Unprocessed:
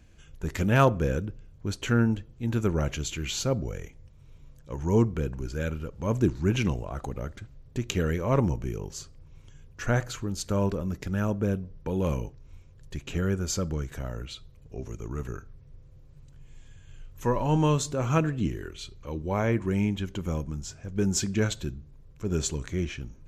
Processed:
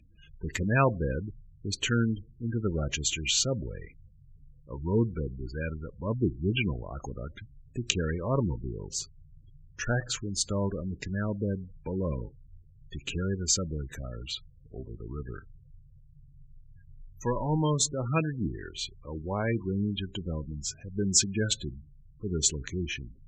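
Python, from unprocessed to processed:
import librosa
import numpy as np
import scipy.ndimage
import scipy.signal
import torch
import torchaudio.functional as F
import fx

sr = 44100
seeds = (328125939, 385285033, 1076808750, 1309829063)

y = fx.spec_gate(x, sr, threshold_db=-20, keep='strong')
y = fx.band_shelf(y, sr, hz=4200.0, db=10.0, octaves=2.8)
y = fx.notch(y, sr, hz=2200.0, q=12.0)
y = F.gain(torch.from_numpy(y), -3.5).numpy()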